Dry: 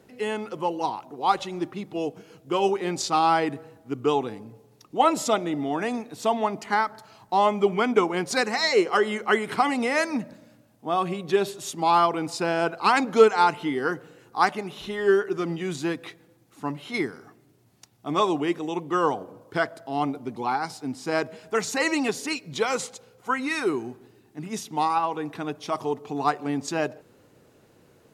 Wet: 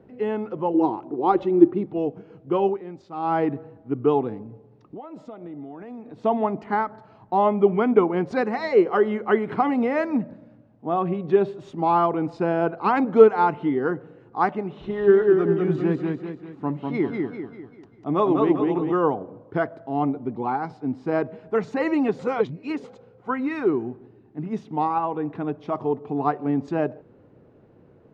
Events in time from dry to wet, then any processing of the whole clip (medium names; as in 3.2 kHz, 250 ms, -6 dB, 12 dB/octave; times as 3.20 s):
0.74–1.86 s: peaking EQ 340 Hz +13 dB 0.54 oct
2.59–3.40 s: dip -13 dB, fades 0.25 s
4.42–6.24 s: compression, threshold -39 dBFS
14.68–18.92 s: modulated delay 197 ms, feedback 45%, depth 74 cents, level -3.5 dB
22.19–22.84 s: reverse
whole clip: low-pass 2.6 kHz 12 dB/octave; tilt shelf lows +7 dB, about 1.1 kHz; trim -1.5 dB